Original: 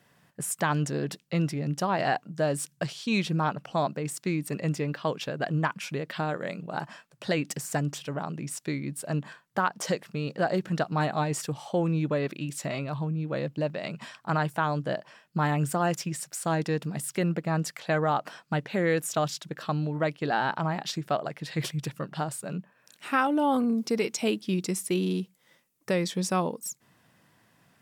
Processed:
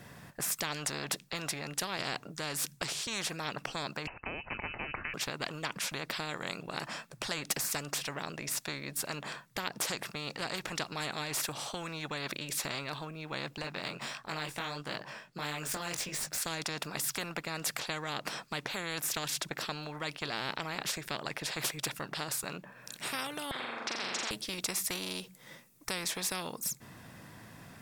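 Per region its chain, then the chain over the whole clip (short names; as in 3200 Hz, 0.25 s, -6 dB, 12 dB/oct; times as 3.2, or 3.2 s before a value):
4.07–5.14 upward compressor, threshold -40 dBFS + inverted band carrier 2800 Hz
13.62–16.38 median filter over 3 samples + chorus 1.5 Hz, delay 19 ms, depth 3.6 ms
23.51–24.31 Butterworth band-pass 1100 Hz, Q 1.5 + flutter echo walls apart 7.3 m, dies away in 0.66 s + spectral compressor 10:1
whole clip: low shelf 150 Hz +10 dB; notch 3000 Hz, Q 14; spectral compressor 4:1; gain -4 dB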